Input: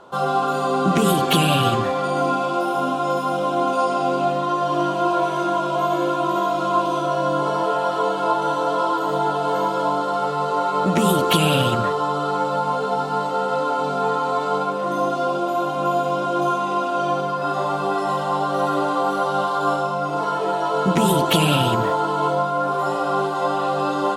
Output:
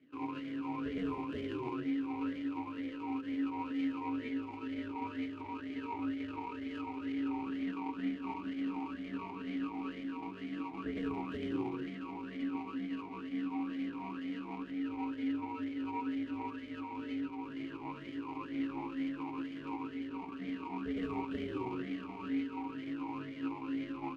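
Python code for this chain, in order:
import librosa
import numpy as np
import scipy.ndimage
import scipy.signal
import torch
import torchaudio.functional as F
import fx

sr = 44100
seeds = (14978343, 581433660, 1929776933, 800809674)

y = scipy.ndimage.median_filter(x, 41, mode='constant')
y = y * np.sin(2.0 * np.pi * 250.0 * np.arange(len(y)) / sr)
y = fx.vowel_sweep(y, sr, vowels='i-u', hz=2.1)
y = y * 10.0 ** (1.0 / 20.0)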